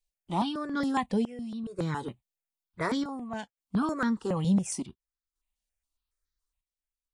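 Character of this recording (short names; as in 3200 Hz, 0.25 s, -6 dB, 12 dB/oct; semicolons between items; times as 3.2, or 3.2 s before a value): chopped level 0.56 Hz, depth 65%, duty 70%; notches that jump at a steady rate 7.2 Hz 340–2700 Hz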